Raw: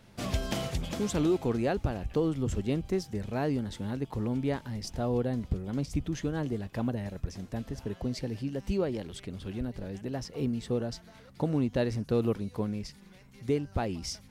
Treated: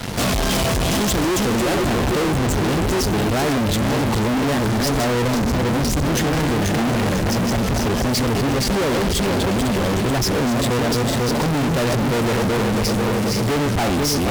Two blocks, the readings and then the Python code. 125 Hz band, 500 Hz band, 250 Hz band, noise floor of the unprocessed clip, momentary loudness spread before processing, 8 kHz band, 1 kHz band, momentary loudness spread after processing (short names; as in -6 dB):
+12.5 dB, +12.0 dB, +12.0 dB, -54 dBFS, 9 LU, +20.0 dB, +18.0 dB, 1 LU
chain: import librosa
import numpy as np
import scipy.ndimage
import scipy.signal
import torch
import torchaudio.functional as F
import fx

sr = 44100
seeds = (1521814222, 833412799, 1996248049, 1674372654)

y = fx.reverse_delay_fb(x, sr, ms=247, feedback_pct=63, wet_db=-6.0)
y = fx.fuzz(y, sr, gain_db=55.0, gate_db=-57.0)
y = y * 10.0 ** (-5.0 / 20.0)